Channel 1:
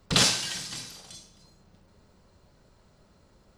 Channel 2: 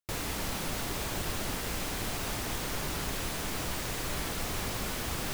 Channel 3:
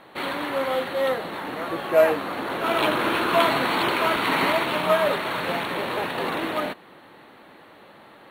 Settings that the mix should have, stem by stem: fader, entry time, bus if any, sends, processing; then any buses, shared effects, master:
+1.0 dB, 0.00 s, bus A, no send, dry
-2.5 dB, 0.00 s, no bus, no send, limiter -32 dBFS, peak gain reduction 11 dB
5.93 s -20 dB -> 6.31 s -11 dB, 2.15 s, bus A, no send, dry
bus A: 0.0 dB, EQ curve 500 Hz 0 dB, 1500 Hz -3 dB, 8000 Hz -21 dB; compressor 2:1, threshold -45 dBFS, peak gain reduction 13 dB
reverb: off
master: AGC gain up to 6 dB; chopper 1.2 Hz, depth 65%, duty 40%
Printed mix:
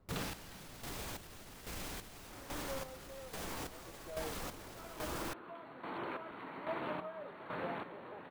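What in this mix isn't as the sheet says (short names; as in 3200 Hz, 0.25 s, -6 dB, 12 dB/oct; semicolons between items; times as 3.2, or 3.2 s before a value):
stem 1 +1.0 dB -> -5.5 dB; stem 3 -20.0 dB -> -11.5 dB; master: missing AGC gain up to 6 dB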